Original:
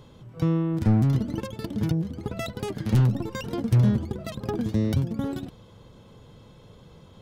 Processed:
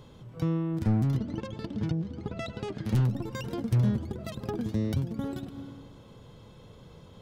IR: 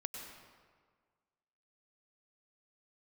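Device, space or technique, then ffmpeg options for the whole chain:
ducked reverb: -filter_complex "[0:a]asplit=3[s0][s1][s2];[1:a]atrim=start_sample=2205[s3];[s1][s3]afir=irnorm=-1:irlink=0[s4];[s2]apad=whole_len=318284[s5];[s4][s5]sidechaincompress=threshold=0.01:ratio=8:attack=16:release=182,volume=0.944[s6];[s0][s6]amix=inputs=2:normalize=0,asettb=1/sr,asplit=3[s7][s8][s9];[s7]atrim=end=1.174[s10];[s8]atrim=start=1.17:end=2.85,asetpts=PTS-STARTPTS,afade=t=in:d=0.004:c=qsin,afade=t=out:st=1.676:d=0.004:c=qsin,lowpass=5500[s11];[s9]atrim=start=2.846[s12];[s10][s11]acrossfade=d=0.004:c1=hsin:c2=qsin[s13];[s13][s12]acrossfade=d=0.004:c1=qsin:c2=hsin,volume=0.531"

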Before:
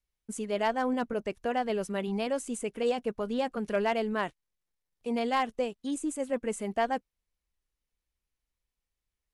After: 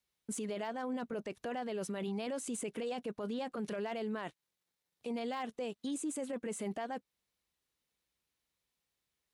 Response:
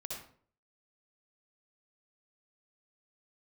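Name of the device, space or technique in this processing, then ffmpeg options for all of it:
broadcast voice chain: -af "highpass=120,deesser=0.8,acompressor=threshold=0.02:ratio=4,equalizer=f=3800:t=o:w=0.4:g=4,alimiter=level_in=3.55:limit=0.0631:level=0:latency=1:release=11,volume=0.282,volume=1.58"

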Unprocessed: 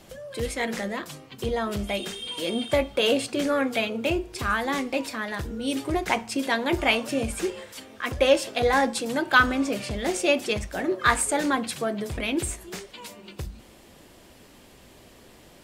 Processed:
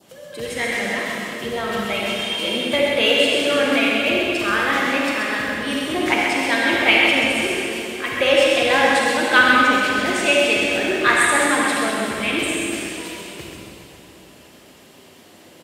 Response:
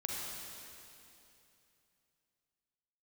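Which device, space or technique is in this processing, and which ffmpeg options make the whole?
PA in a hall: -filter_complex "[0:a]adynamicequalizer=threshold=0.00891:dfrequency=2200:dqfactor=1.2:tfrequency=2200:tqfactor=1.2:attack=5:release=100:ratio=0.375:range=3.5:mode=boostabove:tftype=bell,highpass=160,equalizer=f=2900:t=o:w=0.23:g=3.5,aecho=1:1:130:0.501[s0];[1:a]atrim=start_sample=2205[s1];[s0][s1]afir=irnorm=-1:irlink=0,volume=1.19"

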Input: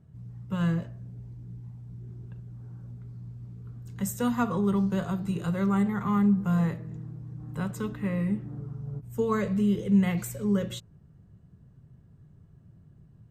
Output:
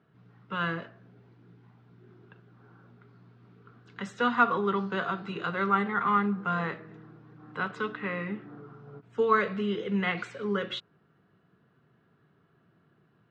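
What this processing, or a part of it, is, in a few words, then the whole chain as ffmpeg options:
phone earpiece: -af "highpass=460,equalizer=f=570:t=q:w=4:g=-7,equalizer=f=870:t=q:w=4:g=-4,equalizer=f=1400:t=q:w=4:g=6,lowpass=f=3900:w=0.5412,lowpass=f=3900:w=1.3066,volume=2.24"

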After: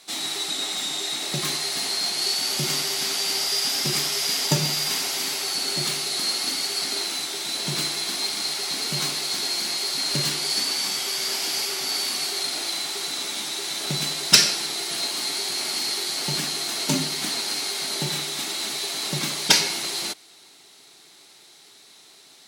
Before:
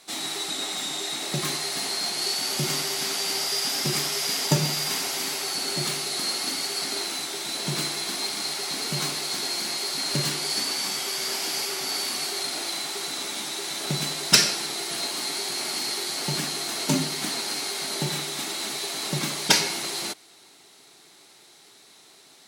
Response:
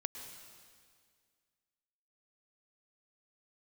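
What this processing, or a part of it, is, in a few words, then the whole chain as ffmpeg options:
presence and air boost: -af "equalizer=f=3900:t=o:w=1.8:g=4,highshelf=f=11000:g=3.5,volume=0.891"

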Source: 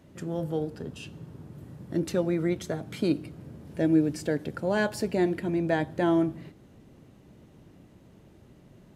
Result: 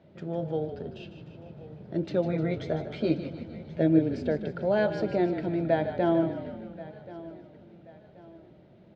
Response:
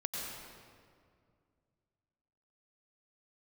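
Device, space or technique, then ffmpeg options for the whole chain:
frequency-shifting delay pedal into a guitar cabinet: -filter_complex "[0:a]asettb=1/sr,asplit=3[s0][s1][s2];[s0]atrim=end=2.234[s3];[s1]atrim=start=2.23:end=3.99,asetpts=PTS-STARTPTS,afade=t=in:d=0.004:c=qsin,afade=t=out:st=1.756:d=0.004:c=qsin,asplit=2[s4][s5];[s5]adelay=13,volume=0.708[s6];[s4][s6]amix=inputs=2:normalize=0,atrim=end_sample=77616[s7];[s2]atrim=start=3.986[s8];[s3][s7]acrossfade=d=0.004:c1=hsin:c2=qsin[s9];[s9][s8]acrossfade=d=0.004:c1=qsin:c2=hsin,asplit=8[s10][s11][s12][s13][s14][s15][s16][s17];[s11]adelay=152,afreqshift=-37,volume=0.316[s18];[s12]adelay=304,afreqshift=-74,volume=0.186[s19];[s13]adelay=456,afreqshift=-111,volume=0.11[s20];[s14]adelay=608,afreqshift=-148,volume=0.0653[s21];[s15]adelay=760,afreqshift=-185,volume=0.0385[s22];[s16]adelay=912,afreqshift=-222,volume=0.0226[s23];[s17]adelay=1064,afreqshift=-259,volume=0.0133[s24];[s10][s18][s19][s20][s21][s22][s23][s24]amix=inputs=8:normalize=0,highpass=97,equalizer=f=110:t=q:w=4:g=-5,equalizer=f=270:t=q:w=4:g=-8,equalizer=f=630:t=q:w=4:g=5,equalizer=f=1100:t=q:w=4:g=-8,equalizer=f=1800:t=q:w=4:g=-5,equalizer=f=2800:t=q:w=4:g=-5,lowpass=f=3900:w=0.5412,lowpass=f=3900:w=1.3066,aecho=1:1:1081|2162|3243:0.126|0.0453|0.0163"

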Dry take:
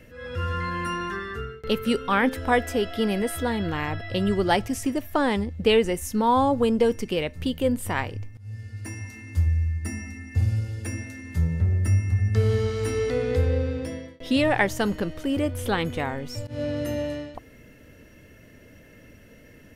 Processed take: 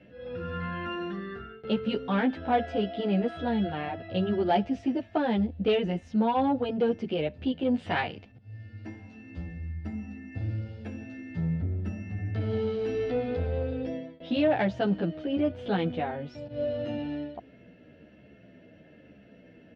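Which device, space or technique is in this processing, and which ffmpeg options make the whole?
barber-pole flanger into a guitar amplifier: -filter_complex "[0:a]asplit=2[s0][s1];[s1]adelay=11.1,afreqshift=-1.1[s2];[s0][s2]amix=inputs=2:normalize=1,asoftclip=type=tanh:threshold=0.133,highpass=87,equalizer=f=100:t=q:w=4:g=-5,equalizer=f=190:t=q:w=4:g=7,equalizer=f=320:t=q:w=4:g=3,equalizer=f=690:t=q:w=4:g=7,equalizer=f=1100:t=q:w=4:g=-8,equalizer=f=2000:t=q:w=4:g=-6,lowpass=f=3700:w=0.5412,lowpass=f=3700:w=1.3066,asettb=1/sr,asplit=3[s3][s4][s5];[s3]atrim=end=7.744[s6];[s4]atrim=start=7.74:end=8.32,asetpts=PTS-STARTPTS,afade=t=in:d=0.004:c=qsin,afade=t=out:st=0.576:d=0.004:c=qsin,equalizer=f=3700:w=0.31:g=9.5[s7];[s5]atrim=start=8.316[s8];[s6][s7]acrossfade=d=0.004:c1=hsin:c2=qsin[s9];[s9][s8]acrossfade=d=0.004:c1=qsin:c2=hsin,volume=0.891"

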